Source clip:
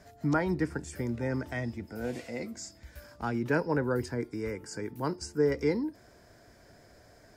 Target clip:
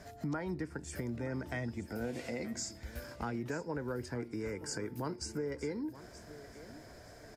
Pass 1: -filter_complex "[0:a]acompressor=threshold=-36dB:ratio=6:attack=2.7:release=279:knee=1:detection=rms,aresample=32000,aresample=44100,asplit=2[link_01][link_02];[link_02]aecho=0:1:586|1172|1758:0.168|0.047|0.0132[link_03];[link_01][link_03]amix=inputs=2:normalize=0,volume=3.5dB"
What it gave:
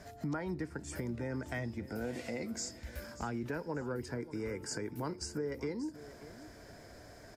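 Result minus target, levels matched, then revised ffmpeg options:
echo 339 ms early
-filter_complex "[0:a]acompressor=threshold=-36dB:ratio=6:attack=2.7:release=279:knee=1:detection=rms,aresample=32000,aresample=44100,asplit=2[link_01][link_02];[link_02]aecho=0:1:925|1850|2775:0.168|0.047|0.0132[link_03];[link_01][link_03]amix=inputs=2:normalize=0,volume=3.5dB"

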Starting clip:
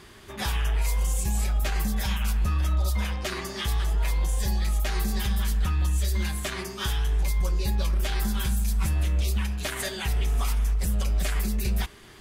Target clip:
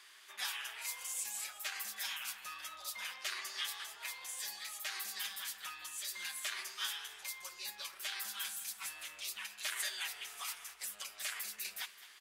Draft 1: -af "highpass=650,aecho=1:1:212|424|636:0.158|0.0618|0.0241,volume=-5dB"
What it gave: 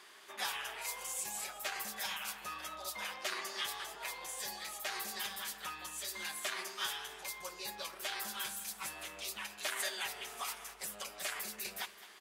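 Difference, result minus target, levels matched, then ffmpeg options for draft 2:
500 Hz band +12.0 dB
-af "highpass=1500,aecho=1:1:212|424|636:0.158|0.0618|0.0241,volume=-5dB"

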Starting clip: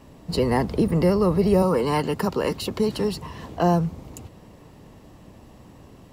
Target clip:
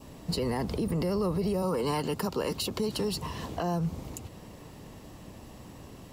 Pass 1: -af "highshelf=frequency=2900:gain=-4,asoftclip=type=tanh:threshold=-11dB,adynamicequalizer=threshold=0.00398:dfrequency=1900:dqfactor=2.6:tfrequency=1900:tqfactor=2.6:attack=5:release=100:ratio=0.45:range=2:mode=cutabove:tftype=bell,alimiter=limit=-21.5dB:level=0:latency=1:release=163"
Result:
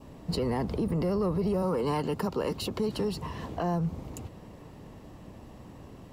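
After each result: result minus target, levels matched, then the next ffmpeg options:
soft clipping: distortion +11 dB; 8,000 Hz band −7.0 dB
-af "highshelf=frequency=2900:gain=-4,asoftclip=type=tanh:threshold=-4.5dB,adynamicequalizer=threshold=0.00398:dfrequency=1900:dqfactor=2.6:tfrequency=1900:tqfactor=2.6:attack=5:release=100:ratio=0.45:range=2:mode=cutabove:tftype=bell,alimiter=limit=-21.5dB:level=0:latency=1:release=163"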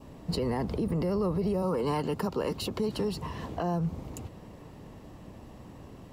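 8,000 Hz band −6.5 dB
-af "highshelf=frequency=2900:gain=6,asoftclip=type=tanh:threshold=-4.5dB,adynamicequalizer=threshold=0.00398:dfrequency=1900:dqfactor=2.6:tfrequency=1900:tqfactor=2.6:attack=5:release=100:ratio=0.45:range=2:mode=cutabove:tftype=bell,alimiter=limit=-21.5dB:level=0:latency=1:release=163"

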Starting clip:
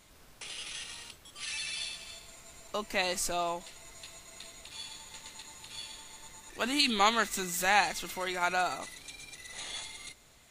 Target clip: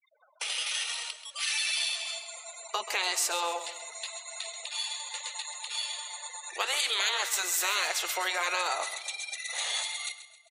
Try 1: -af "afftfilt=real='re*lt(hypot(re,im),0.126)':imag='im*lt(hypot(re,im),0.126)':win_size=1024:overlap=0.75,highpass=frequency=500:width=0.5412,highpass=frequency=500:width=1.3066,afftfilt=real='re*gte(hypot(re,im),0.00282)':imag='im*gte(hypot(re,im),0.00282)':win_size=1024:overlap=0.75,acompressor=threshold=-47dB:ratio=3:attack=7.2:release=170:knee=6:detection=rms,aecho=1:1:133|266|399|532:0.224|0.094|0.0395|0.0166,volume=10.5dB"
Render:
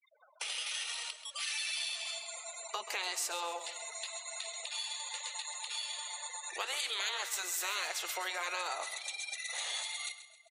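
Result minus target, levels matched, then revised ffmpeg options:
downward compressor: peak gain reduction +7.5 dB
-af "afftfilt=real='re*lt(hypot(re,im),0.126)':imag='im*lt(hypot(re,im),0.126)':win_size=1024:overlap=0.75,highpass=frequency=500:width=0.5412,highpass=frequency=500:width=1.3066,afftfilt=real='re*gte(hypot(re,im),0.00282)':imag='im*gte(hypot(re,im),0.00282)':win_size=1024:overlap=0.75,acompressor=threshold=-36dB:ratio=3:attack=7.2:release=170:knee=6:detection=rms,aecho=1:1:133|266|399|532:0.224|0.094|0.0395|0.0166,volume=10.5dB"

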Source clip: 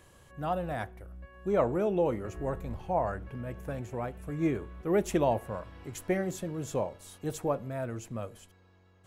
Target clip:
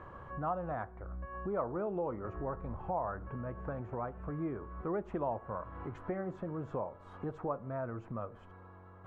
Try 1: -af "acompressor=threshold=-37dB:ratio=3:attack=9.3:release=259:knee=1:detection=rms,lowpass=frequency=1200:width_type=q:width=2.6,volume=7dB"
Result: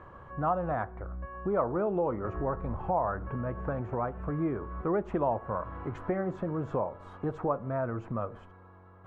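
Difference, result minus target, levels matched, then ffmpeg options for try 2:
downward compressor: peak gain reduction −6.5 dB
-af "acompressor=threshold=-47dB:ratio=3:attack=9.3:release=259:knee=1:detection=rms,lowpass=frequency=1200:width_type=q:width=2.6,volume=7dB"

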